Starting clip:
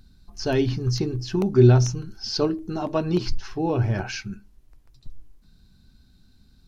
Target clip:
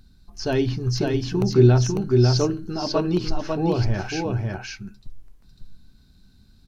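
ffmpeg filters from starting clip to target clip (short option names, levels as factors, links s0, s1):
-af "aecho=1:1:549:0.708"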